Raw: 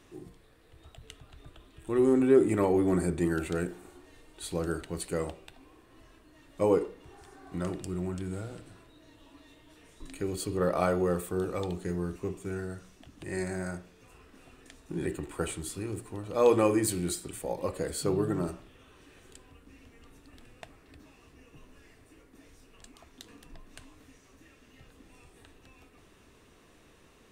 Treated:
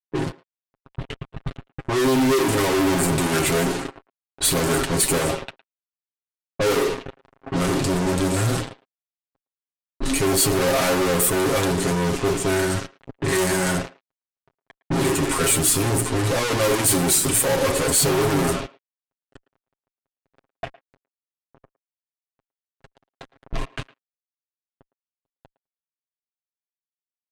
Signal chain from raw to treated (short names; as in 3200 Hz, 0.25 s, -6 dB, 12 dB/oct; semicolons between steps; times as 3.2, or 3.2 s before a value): gate -49 dBFS, range -7 dB; fuzz box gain 51 dB, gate -51 dBFS; high shelf 7500 Hz +8 dB; comb 7.4 ms, depth 65%; low-pass opened by the level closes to 900 Hz, open at -9 dBFS; speakerphone echo 0.11 s, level -20 dB; gain -7.5 dB